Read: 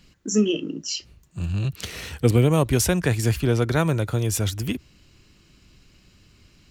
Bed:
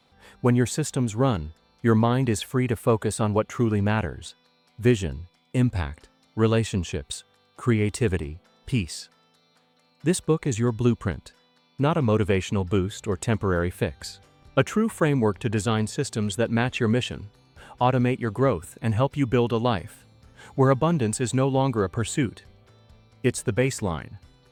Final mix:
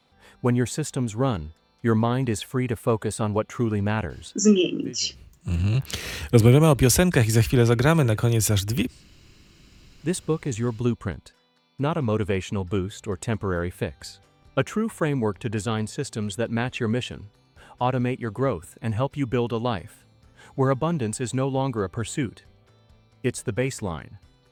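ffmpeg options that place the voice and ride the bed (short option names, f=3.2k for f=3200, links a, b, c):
-filter_complex "[0:a]adelay=4100,volume=2.5dB[a];[1:a]volume=16.5dB,afade=t=out:st=4.42:d=0.26:silence=0.112202,afade=t=in:st=9.61:d=0.54:silence=0.125893[b];[a][b]amix=inputs=2:normalize=0"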